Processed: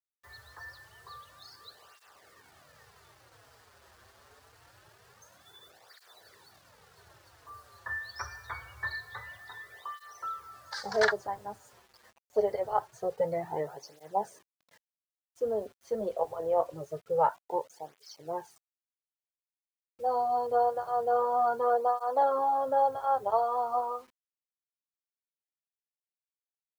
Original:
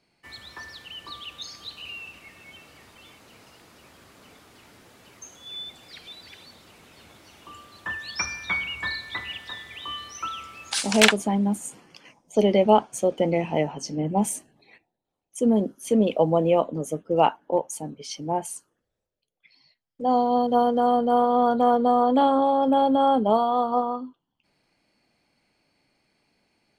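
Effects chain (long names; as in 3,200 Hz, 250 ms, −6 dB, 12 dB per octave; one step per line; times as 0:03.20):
drawn EQ curve 120 Hz 0 dB, 250 Hz −23 dB, 410 Hz −2 dB, 810 Hz 0 dB, 1,800 Hz +2 dB, 2,600 Hz −28 dB, 4,600 Hz −3 dB, 9,400 Hz −26 dB
bit reduction 9 bits
through-zero flanger with one copy inverted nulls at 0.25 Hz, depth 7.2 ms
level −2.5 dB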